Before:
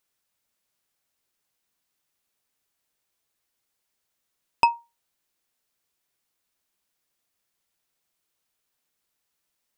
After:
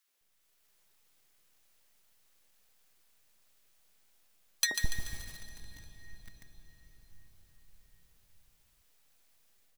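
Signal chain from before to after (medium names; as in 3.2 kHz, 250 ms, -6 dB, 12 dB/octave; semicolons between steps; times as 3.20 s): time-frequency box 4.47–4.69 s, 300–3500 Hz -9 dB; resonant high shelf 4.4 kHz +6.5 dB, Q 3; level rider gain up to 6 dB; in parallel at +0.5 dB: peak limiter -12.5 dBFS, peak gain reduction 8.5 dB; on the sum: full-wave rectifier; three bands offset in time highs, mids, lows 80/210 ms, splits 270/980 Hz; on a send at -9 dB: reverberation RT60 6.1 s, pre-delay 112 ms; on the sum: bit-crushed delay 144 ms, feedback 55%, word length 6-bit, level -6 dB; trim -7.5 dB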